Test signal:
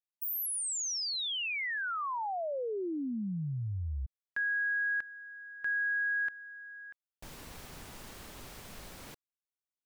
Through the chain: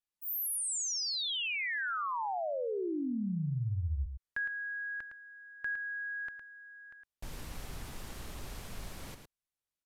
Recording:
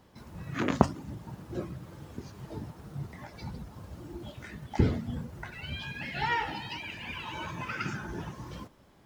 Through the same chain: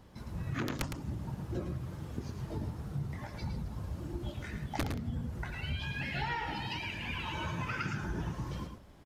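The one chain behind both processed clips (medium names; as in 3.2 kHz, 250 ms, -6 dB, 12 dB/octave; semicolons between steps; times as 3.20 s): integer overflow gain 15.5 dB; bass shelf 110 Hz +10 dB; resampled via 32 kHz; compression 8:1, threshold -32 dBFS; delay 110 ms -7.5 dB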